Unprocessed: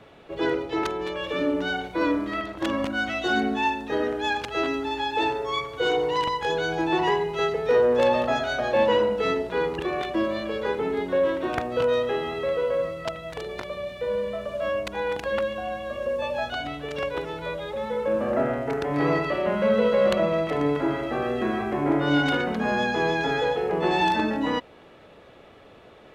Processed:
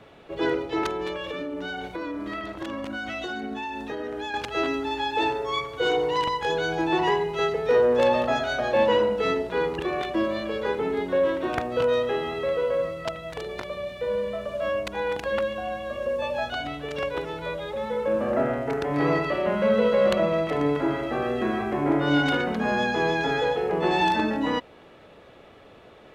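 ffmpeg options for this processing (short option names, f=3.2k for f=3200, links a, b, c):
-filter_complex "[0:a]asettb=1/sr,asplit=3[a][b][c];[a]atrim=end=1.154[d];[b]atrim=start=1.15:end=4.34,asetpts=PTS-STARTPTS,afade=t=in:d=0.004:c=qsin,afade=t=out:st=3.186:d=0.004:c=qsin,acompressor=threshold=-28dB:ratio=10:attack=3.2:release=140:knee=1:detection=peak[e];[c]atrim=start=4.336[f];[d][e]acrossfade=d=0.004:c1=hsin:c2=qsin[g];[g][f]acrossfade=d=0.004:c1=qsin:c2=hsin"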